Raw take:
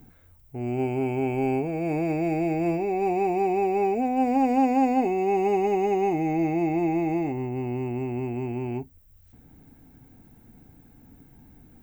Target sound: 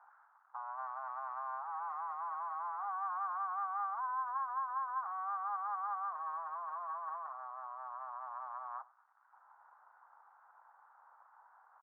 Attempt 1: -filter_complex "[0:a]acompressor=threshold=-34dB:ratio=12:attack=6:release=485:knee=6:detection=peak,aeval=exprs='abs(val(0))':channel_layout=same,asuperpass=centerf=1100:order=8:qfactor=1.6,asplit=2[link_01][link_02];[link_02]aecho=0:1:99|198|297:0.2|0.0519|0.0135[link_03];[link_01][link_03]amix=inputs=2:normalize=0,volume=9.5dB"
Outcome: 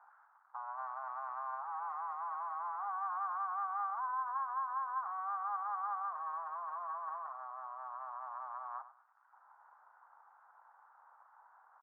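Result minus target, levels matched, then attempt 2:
echo-to-direct +8.5 dB
-filter_complex "[0:a]acompressor=threshold=-34dB:ratio=12:attack=6:release=485:knee=6:detection=peak,aeval=exprs='abs(val(0))':channel_layout=same,asuperpass=centerf=1100:order=8:qfactor=1.6,asplit=2[link_01][link_02];[link_02]aecho=0:1:99|198:0.075|0.0195[link_03];[link_01][link_03]amix=inputs=2:normalize=0,volume=9.5dB"

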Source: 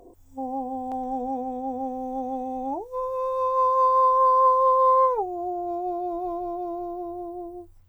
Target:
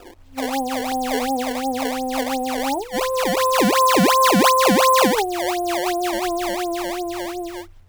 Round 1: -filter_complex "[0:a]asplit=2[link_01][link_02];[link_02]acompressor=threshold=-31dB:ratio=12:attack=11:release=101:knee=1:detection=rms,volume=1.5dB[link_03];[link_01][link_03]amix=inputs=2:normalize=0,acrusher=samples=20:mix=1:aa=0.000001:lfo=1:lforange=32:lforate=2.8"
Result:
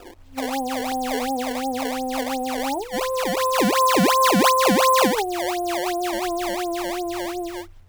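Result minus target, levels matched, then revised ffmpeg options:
downward compressor: peak gain reduction +8 dB
-filter_complex "[0:a]asplit=2[link_01][link_02];[link_02]acompressor=threshold=-22.5dB:ratio=12:attack=11:release=101:knee=1:detection=rms,volume=1.5dB[link_03];[link_01][link_03]amix=inputs=2:normalize=0,acrusher=samples=20:mix=1:aa=0.000001:lfo=1:lforange=32:lforate=2.8"

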